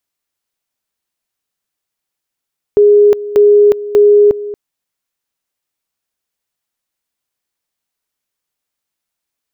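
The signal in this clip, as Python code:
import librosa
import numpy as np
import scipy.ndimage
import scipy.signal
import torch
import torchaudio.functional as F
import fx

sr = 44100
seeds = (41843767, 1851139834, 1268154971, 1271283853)

y = fx.two_level_tone(sr, hz=413.0, level_db=-3.5, drop_db=16.0, high_s=0.36, low_s=0.23, rounds=3)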